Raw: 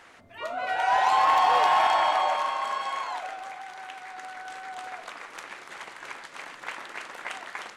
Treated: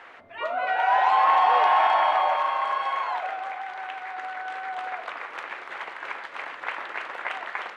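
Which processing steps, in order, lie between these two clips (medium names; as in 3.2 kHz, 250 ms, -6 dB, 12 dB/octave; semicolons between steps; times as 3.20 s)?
in parallel at +1 dB: compression, threshold -32 dBFS, peak gain reduction 13.5 dB; on the sum: three-band isolator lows -12 dB, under 360 Hz, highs -20 dB, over 3.3 kHz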